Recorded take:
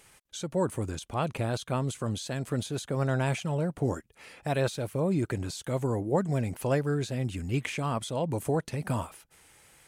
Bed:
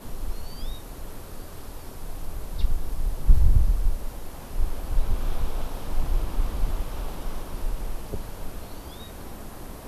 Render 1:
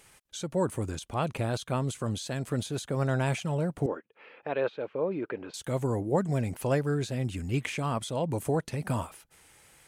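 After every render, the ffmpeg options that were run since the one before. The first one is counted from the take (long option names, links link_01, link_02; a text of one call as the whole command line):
ffmpeg -i in.wav -filter_complex "[0:a]asettb=1/sr,asplit=3[link_01][link_02][link_03];[link_01]atrim=end=3.864[link_04];[link_02]atrim=start=3.86:end=5.54,asetpts=PTS-STARTPTS,afade=type=in:duration=0.004:curve=qsin,afade=type=out:start_time=1.676:duration=0.004:curve=qsin,highpass=340,equalizer=frequency=470:width_type=q:width=4:gain=5,equalizer=frequency=700:width_type=q:width=4:gain=-4,equalizer=frequency=2000:width_type=q:width=4:gain=-4,lowpass=frequency=2800:width=0.5412,lowpass=frequency=2800:width=1.3066[link_05];[link_03]atrim=start=5.536[link_06];[link_04][link_05]acrossfade=duration=0.004:curve1=hsin:curve2=qsin[link_07];[link_07][link_06]acrossfade=duration=0.004:curve1=qsin:curve2=hsin" out.wav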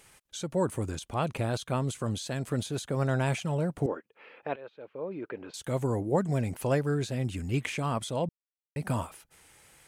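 ffmpeg -i in.wav -filter_complex "[0:a]asplit=4[link_01][link_02][link_03][link_04];[link_01]atrim=end=4.56,asetpts=PTS-STARTPTS,afade=type=out:start_time=4.556:duration=0.004:curve=hsin:silence=0.0891251[link_05];[link_02]atrim=start=4.56:end=8.29,asetpts=PTS-STARTPTS,afade=type=in:duration=1.17:silence=0.0891251,afade=type=out:start_time=3.726:duration=0.004:curve=hsin[link_06];[link_03]atrim=start=8.29:end=8.76,asetpts=PTS-STARTPTS,volume=0[link_07];[link_04]atrim=start=8.76,asetpts=PTS-STARTPTS,afade=type=in:duration=0.004:curve=hsin[link_08];[link_05][link_06][link_07][link_08]concat=n=4:v=0:a=1" out.wav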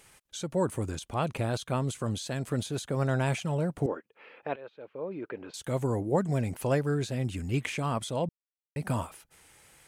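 ffmpeg -i in.wav -af anull out.wav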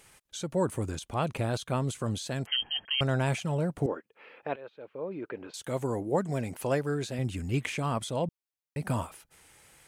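ffmpeg -i in.wav -filter_complex "[0:a]asettb=1/sr,asplit=3[link_01][link_02][link_03];[link_01]atrim=end=2.464[link_04];[link_02]atrim=start=2.46:end=3.01,asetpts=PTS-STARTPTS,afade=type=in:duration=0.004:curve=qsin,afade=type=out:start_time=0.546:duration=0.004:curve=qsin,lowpass=frequency=2800:width_type=q:width=0.5098,lowpass=frequency=2800:width_type=q:width=0.6013,lowpass=frequency=2800:width_type=q:width=0.9,lowpass=frequency=2800:width_type=q:width=2.563,afreqshift=-3300[link_05];[link_03]atrim=start=3.006[link_06];[link_04][link_05]acrossfade=duration=0.004:curve1=hsin:curve2=qsin[link_07];[link_07][link_06]acrossfade=duration=0.004:curve1=qsin:curve2=hsin,asettb=1/sr,asplit=3[link_08][link_09][link_10];[link_08]atrim=end=5.474[link_11];[link_09]atrim=start=5.47:end=7.19,asetpts=PTS-STARTPTS,afade=type=in:duration=0.004:curve=qsin,afade=type=out:start_time=1.716:duration=0.004:curve=qsin,lowshelf=frequency=120:gain=-10.5[link_12];[link_10]atrim=start=7.186[link_13];[link_11][link_12]acrossfade=duration=0.004:curve1=hsin:curve2=qsin[link_14];[link_14][link_13]acrossfade=duration=0.004:curve1=qsin:curve2=hsin" out.wav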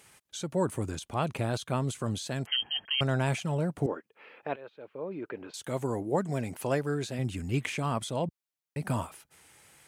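ffmpeg -i in.wav -af "highpass=73,equalizer=frequency=510:width_type=o:width=0.22:gain=-2.5" out.wav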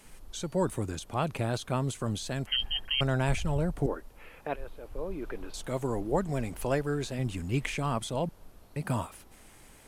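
ffmpeg -i in.wav -i bed.wav -filter_complex "[1:a]volume=-18dB[link_01];[0:a][link_01]amix=inputs=2:normalize=0" out.wav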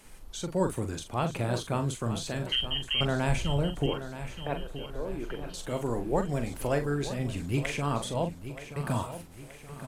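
ffmpeg -i in.wav -filter_complex "[0:a]asplit=2[link_01][link_02];[link_02]adelay=42,volume=-8dB[link_03];[link_01][link_03]amix=inputs=2:normalize=0,aecho=1:1:926|1852|2778|3704|4630:0.251|0.113|0.0509|0.0229|0.0103" out.wav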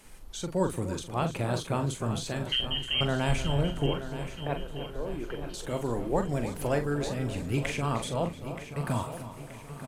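ffmpeg -i in.wav -filter_complex "[0:a]asplit=2[link_01][link_02];[link_02]adelay=302,lowpass=frequency=2900:poles=1,volume=-11.5dB,asplit=2[link_03][link_04];[link_04]adelay=302,lowpass=frequency=2900:poles=1,volume=0.52,asplit=2[link_05][link_06];[link_06]adelay=302,lowpass=frequency=2900:poles=1,volume=0.52,asplit=2[link_07][link_08];[link_08]adelay=302,lowpass=frequency=2900:poles=1,volume=0.52,asplit=2[link_09][link_10];[link_10]adelay=302,lowpass=frequency=2900:poles=1,volume=0.52,asplit=2[link_11][link_12];[link_12]adelay=302,lowpass=frequency=2900:poles=1,volume=0.52[link_13];[link_01][link_03][link_05][link_07][link_09][link_11][link_13]amix=inputs=7:normalize=0" out.wav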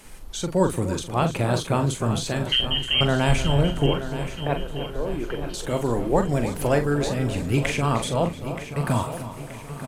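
ffmpeg -i in.wav -af "volume=7dB" out.wav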